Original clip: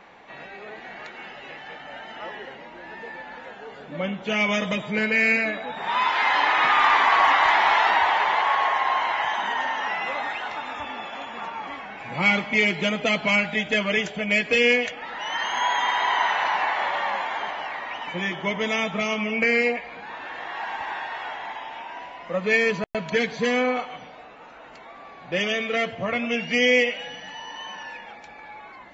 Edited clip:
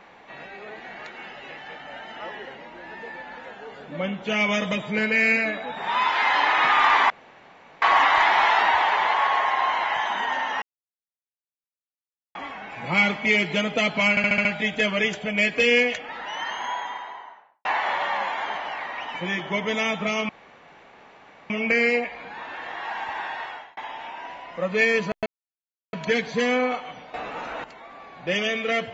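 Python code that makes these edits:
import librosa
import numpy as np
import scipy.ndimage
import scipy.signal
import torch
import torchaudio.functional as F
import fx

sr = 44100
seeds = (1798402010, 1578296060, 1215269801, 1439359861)

y = fx.studio_fade_out(x, sr, start_s=14.94, length_s=1.64)
y = fx.edit(y, sr, fx.insert_room_tone(at_s=7.1, length_s=0.72),
    fx.silence(start_s=9.9, length_s=1.73),
    fx.stutter(start_s=13.38, slice_s=0.07, count=6),
    fx.insert_room_tone(at_s=19.22, length_s=1.21),
    fx.fade_out_span(start_s=21.13, length_s=0.36),
    fx.insert_silence(at_s=22.98, length_s=0.67),
    fx.clip_gain(start_s=24.19, length_s=0.5, db=12.0), tone=tone)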